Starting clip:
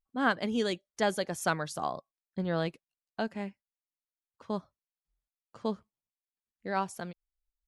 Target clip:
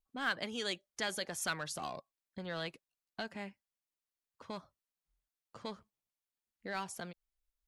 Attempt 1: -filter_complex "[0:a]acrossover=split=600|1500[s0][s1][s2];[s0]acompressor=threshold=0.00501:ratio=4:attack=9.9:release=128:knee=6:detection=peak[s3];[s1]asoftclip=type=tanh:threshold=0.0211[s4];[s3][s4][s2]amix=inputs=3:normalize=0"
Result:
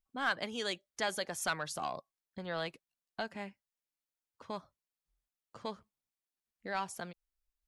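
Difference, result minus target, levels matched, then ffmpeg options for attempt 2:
saturation: distortion -6 dB
-filter_complex "[0:a]acrossover=split=600|1500[s0][s1][s2];[s0]acompressor=threshold=0.00501:ratio=4:attack=9.9:release=128:knee=6:detection=peak[s3];[s1]asoftclip=type=tanh:threshold=0.00631[s4];[s3][s4][s2]amix=inputs=3:normalize=0"

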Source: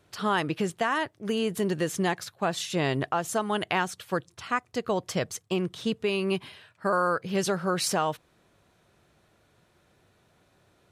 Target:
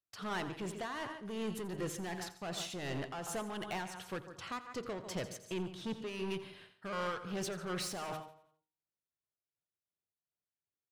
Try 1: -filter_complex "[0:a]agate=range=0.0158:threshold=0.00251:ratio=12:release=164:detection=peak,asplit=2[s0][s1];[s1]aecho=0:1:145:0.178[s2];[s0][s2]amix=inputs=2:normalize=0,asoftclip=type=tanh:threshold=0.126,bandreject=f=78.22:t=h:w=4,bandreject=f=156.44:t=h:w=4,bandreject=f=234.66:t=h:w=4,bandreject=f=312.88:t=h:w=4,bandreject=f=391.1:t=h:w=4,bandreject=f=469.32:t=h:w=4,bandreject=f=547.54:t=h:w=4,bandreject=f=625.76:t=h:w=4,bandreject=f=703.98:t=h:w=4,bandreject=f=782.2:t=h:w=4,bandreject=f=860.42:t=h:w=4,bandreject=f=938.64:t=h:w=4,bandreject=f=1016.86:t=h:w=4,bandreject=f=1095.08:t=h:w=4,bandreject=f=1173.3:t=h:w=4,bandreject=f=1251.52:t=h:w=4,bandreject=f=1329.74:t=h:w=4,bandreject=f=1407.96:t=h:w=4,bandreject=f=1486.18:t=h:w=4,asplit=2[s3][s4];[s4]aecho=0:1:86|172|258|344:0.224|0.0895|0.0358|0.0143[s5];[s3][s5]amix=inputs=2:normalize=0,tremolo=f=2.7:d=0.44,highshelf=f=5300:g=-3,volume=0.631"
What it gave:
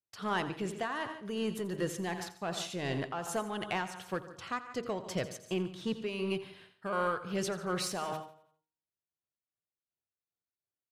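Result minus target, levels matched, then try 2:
saturation: distortion -11 dB
-filter_complex "[0:a]agate=range=0.0158:threshold=0.00251:ratio=12:release=164:detection=peak,asplit=2[s0][s1];[s1]aecho=0:1:145:0.178[s2];[s0][s2]amix=inputs=2:normalize=0,asoftclip=type=tanh:threshold=0.0355,bandreject=f=78.22:t=h:w=4,bandreject=f=156.44:t=h:w=4,bandreject=f=234.66:t=h:w=4,bandreject=f=312.88:t=h:w=4,bandreject=f=391.1:t=h:w=4,bandreject=f=469.32:t=h:w=4,bandreject=f=547.54:t=h:w=4,bandreject=f=625.76:t=h:w=4,bandreject=f=703.98:t=h:w=4,bandreject=f=782.2:t=h:w=4,bandreject=f=860.42:t=h:w=4,bandreject=f=938.64:t=h:w=4,bandreject=f=1016.86:t=h:w=4,bandreject=f=1095.08:t=h:w=4,bandreject=f=1173.3:t=h:w=4,bandreject=f=1251.52:t=h:w=4,bandreject=f=1329.74:t=h:w=4,bandreject=f=1407.96:t=h:w=4,bandreject=f=1486.18:t=h:w=4,asplit=2[s3][s4];[s4]aecho=0:1:86|172|258|344:0.224|0.0895|0.0358|0.0143[s5];[s3][s5]amix=inputs=2:normalize=0,tremolo=f=2.7:d=0.44,highshelf=f=5300:g=-3,volume=0.631"

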